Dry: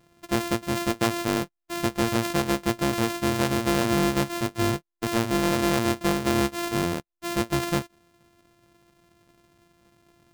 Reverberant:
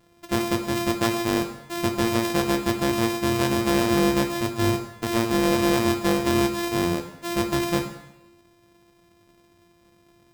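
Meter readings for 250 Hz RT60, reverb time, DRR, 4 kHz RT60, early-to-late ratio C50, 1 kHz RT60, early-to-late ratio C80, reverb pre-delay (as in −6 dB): 0.95 s, 0.90 s, 4.5 dB, 0.85 s, 8.0 dB, 0.95 s, 11.0 dB, 4 ms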